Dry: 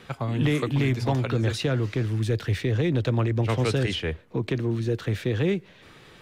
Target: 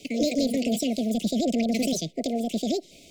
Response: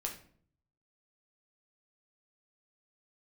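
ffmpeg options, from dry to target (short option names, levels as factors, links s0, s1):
-af "asetrate=88200,aresample=44100,asuperstop=centerf=1200:order=20:qfactor=0.87"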